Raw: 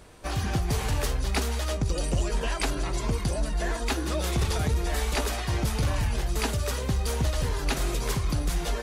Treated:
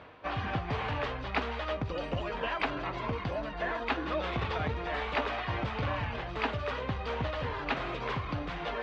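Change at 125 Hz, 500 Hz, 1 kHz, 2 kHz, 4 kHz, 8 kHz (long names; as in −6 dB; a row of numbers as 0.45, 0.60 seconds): −9.0 dB, −2.0 dB, +1.0 dB, 0.0 dB, −6.5 dB, below −25 dB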